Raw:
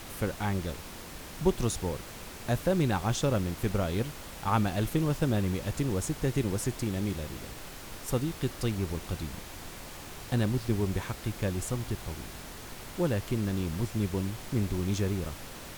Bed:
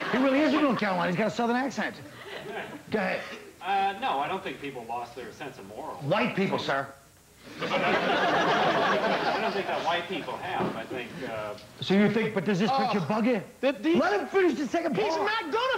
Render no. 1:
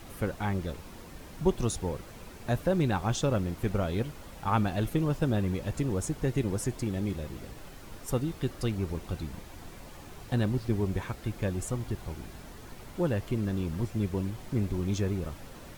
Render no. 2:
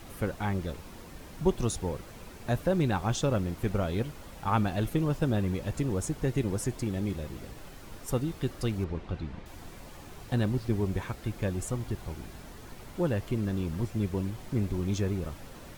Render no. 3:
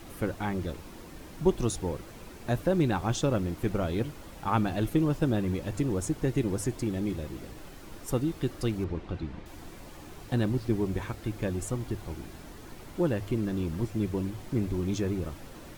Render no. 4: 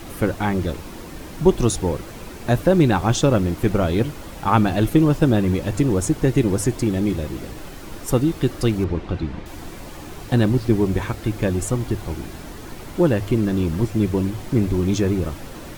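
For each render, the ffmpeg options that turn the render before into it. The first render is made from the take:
-af "afftdn=nr=8:nf=-44"
-filter_complex "[0:a]asettb=1/sr,asplit=3[a][b][c];[a]atrim=end=8.844[d];[b]atrim=start=8.84:end=9.46,asetpts=PTS-STARTPTS,afade=t=in:d=0.004:c=qsin,afade=t=out:st=0.616:d=0.004:c=qsin,lowpass=3.4k[e];[c]atrim=start=9.456[f];[d][e]acrossfade=d=0.004:c1=hsin:c2=qsin[g];[g][f]acrossfade=d=0.004:c1=qsin:c2=hsin"
-af "equalizer=f=320:w=3.9:g=5.5,bandreject=f=50:t=h:w=6,bandreject=f=100:t=h:w=6"
-af "volume=10dB,alimiter=limit=-2dB:level=0:latency=1"

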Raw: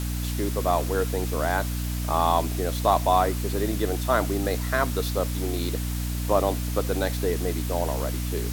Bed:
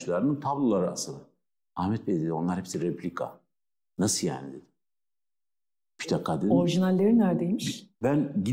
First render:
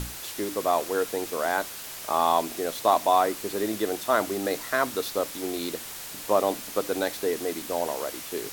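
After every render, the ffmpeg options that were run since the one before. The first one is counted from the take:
-af "bandreject=f=60:t=h:w=6,bandreject=f=120:t=h:w=6,bandreject=f=180:t=h:w=6,bandreject=f=240:t=h:w=6,bandreject=f=300:t=h:w=6"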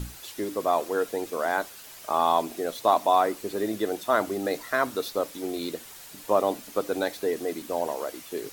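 -af "afftdn=nr=8:nf=-39"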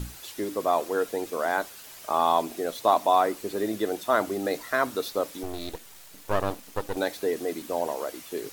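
-filter_complex "[0:a]asettb=1/sr,asplit=3[a][b][c];[a]atrim=end=5.434[d];[b]atrim=start=5.43:end=6.97,asetpts=PTS-STARTPTS,afade=t=in:d=0.004:c=qsin,afade=t=out:st=1.536:d=0.004:c=qsin,aeval=exprs='max(val(0),0)':c=same[e];[c]atrim=start=6.966[f];[d][e]acrossfade=d=0.004:c1=hsin:c2=qsin[g];[g][f]acrossfade=d=0.004:c1=qsin:c2=hsin"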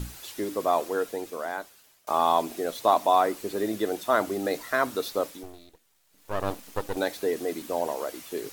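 -filter_complex "[0:a]asplit=4[a][b][c][d];[a]atrim=end=2.07,asetpts=PTS-STARTPTS,afade=t=out:st=0.78:d=1.29:silence=0.0668344[e];[b]atrim=start=2.07:end=5.74,asetpts=PTS-STARTPTS,afade=t=in:d=0.004:c=hsin:silence=0.0668344,afade=t=out:st=3.18:d=0.49:c=qua:silence=0.105925[f];[c]atrim=start=5.74:end=6,asetpts=PTS-STARTPTS,volume=-19.5dB[g];[d]atrim=start=6,asetpts=PTS-STARTPTS,afade=t=in:d=0.49:c=qua:silence=0.105925[h];[e][f][g][h]concat=n=4:v=0:a=1"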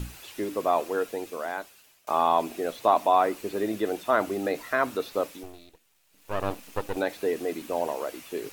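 -filter_complex "[0:a]acrossover=split=2600[a][b];[b]acompressor=threshold=-44dB:ratio=4:attack=1:release=60[c];[a][c]amix=inputs=2:normalize=0,equalizer=f=2.6k:t=o:w=0.36:g=6"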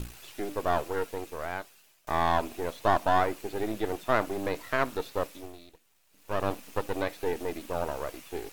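-af "aeval=exprs='if(lt(val(0),0),0.251*val(0),val(0))':c=same"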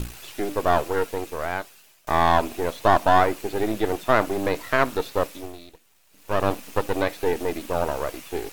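-af "volume=7dB,alimiter=limit=-3dB:level=0:latency=1"

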